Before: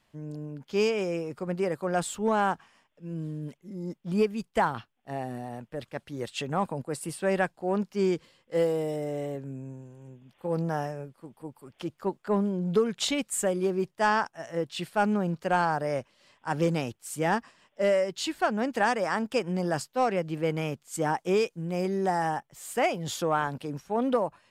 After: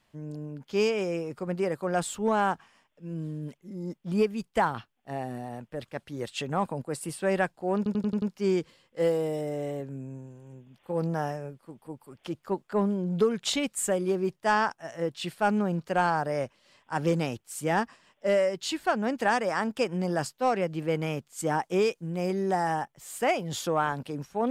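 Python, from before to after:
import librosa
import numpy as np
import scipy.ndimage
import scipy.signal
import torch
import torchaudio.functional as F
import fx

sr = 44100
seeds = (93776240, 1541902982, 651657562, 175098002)

y = fx.edit(x, sr, fx.stutter(start_s=7.77, slice_s=0.09, count=6), tone=tone)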